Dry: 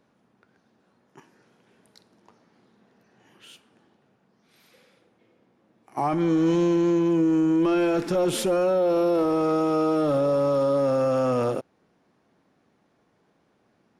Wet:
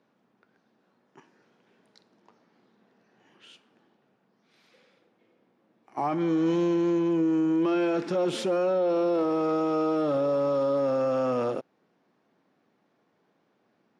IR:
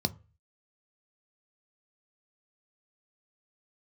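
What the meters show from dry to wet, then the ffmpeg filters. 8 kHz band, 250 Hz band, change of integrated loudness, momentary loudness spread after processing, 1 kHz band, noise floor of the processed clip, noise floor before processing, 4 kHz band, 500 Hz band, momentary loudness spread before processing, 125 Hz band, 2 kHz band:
no reading, -3.5 dB, -3.5 dB, 4 LU, -3.0 dB, -71 dBFS, -67 dBFS, -3.5 dB, -3.0 dB, 4 LU, -6.5 dB, -3.0 dB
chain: -af "highpass=160,lowpass=5700,volume=0.708"

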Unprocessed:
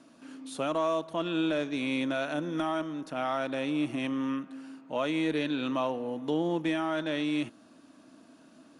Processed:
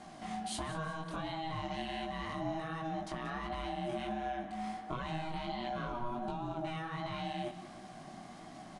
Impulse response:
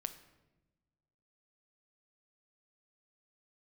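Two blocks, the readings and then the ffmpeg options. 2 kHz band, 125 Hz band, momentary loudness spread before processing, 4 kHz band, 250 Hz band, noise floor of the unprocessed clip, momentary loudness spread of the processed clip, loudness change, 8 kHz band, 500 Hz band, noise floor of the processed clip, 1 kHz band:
-7.5 dB, -1.0 dB, 7 LU, -6.5 dB, -11.5 dB, -57 dBFS, 9 LU, -8.5 dB, no reading, -10.0 dB, -51 dBFS, -2.0 dB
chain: -filter_complex "[0:a]lowshelf=f=180:t=q:w=1.5:g=8.5,alimiter=level_in=1.88:limit=0.0631:level=0:latency=1:release=65,volume=0.531,acompressor=threshold=0.00794:ratio=6,aeval=exprs='val(0)*sin(2*PI*480*n/s)':c=same,flanger=delay=16:depth=7:speed=1.4,aecho=1:1:182|364|546|728:0.188|0.0772|0.0317|0.013,asplit=2[s0][s1];[1:a]atrim=start_sample=2205[s2];[s1][s2]afir=irnorm=-1:irlink=0,volume=1.33[s3];[s0][s3]amix=inputs=2:normalize=0,aresample=22050,aresample=44100,volume=2"

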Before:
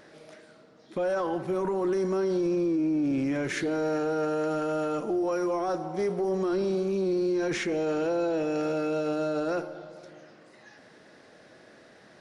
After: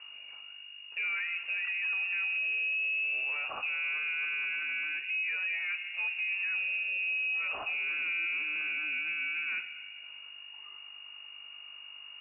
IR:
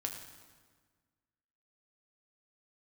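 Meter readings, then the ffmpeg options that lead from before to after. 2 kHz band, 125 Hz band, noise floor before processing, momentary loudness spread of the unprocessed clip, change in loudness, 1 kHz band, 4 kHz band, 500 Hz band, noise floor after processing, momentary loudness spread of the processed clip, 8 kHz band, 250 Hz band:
+11.0 dB, under -30 dB, -55 dBFS, 4 LU, -2.5 dB, -13.5 dB, +6.0 dB, -31.0 dB, -48 dBFS, 16 LU, under -35 dB, under -35 dB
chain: -af "aeval=exprs='val(0)+0.00891*(sin(2*PI*50*n/s)+sin(2*PI*2*50*n/s)/2+sin(2*PI*3*50*n/s)/3+sin(2*PI*4*50*n/s)/4+sin(2*PI*5*50*n/s)/5)':c=same,lowpass=f=2500:t=q:w=0.5098,lowpass=f=2500:t=q:w=0.6013,lowpass=f=2500:t=q:w=0.9,lowpass=f=2500:t=q:w=2.563,afreqshift=-2900,volume=0.501"

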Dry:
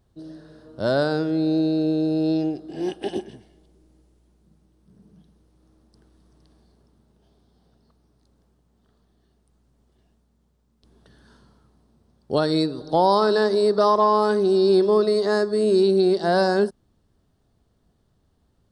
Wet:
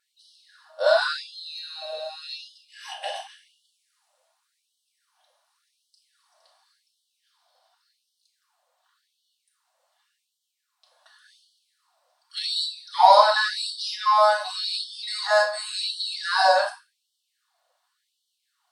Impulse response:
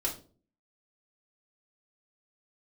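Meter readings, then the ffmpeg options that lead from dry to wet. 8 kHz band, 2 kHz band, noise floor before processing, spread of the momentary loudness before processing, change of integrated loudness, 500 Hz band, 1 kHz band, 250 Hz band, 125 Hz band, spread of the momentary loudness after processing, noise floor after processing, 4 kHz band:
no reading, +6.0 dB, -66 dBFS, 11 LU, -2.0 dB, -6.5 dB, +3.5 dB, under -40 dB, under -40 dB, 18 LU, -78 dBFS, +6.5 dB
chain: -filter_complex "[0:a]aeval=exprs='0.447*(cos(1*acos(clip(val(0)/0.447,-1,1)))-cos(1*PI/2))+0.0224*(cos(3*acos(clip(val(0)/0.447,-1,1)))-cos(3*PI/2))':c=same[s0];[1:a]atrim=start_sample=2205,asetrate=33516,aresample=44100[s1];[s0][s1]afir=irnorm=-1:irlink=0,afftfilt=real='re*gte(b*sr/1024,510*pow(2900/510,0.5+0.5*sin(2*PI*0.89*pts/sr)))':imag='im*gte(b*sr/1024,510*pow(2900/510,0.5+0.5*sin(2*PI*0.89*pts/sr)))':win_size=1024:overlap=0.75,volume=1.12"

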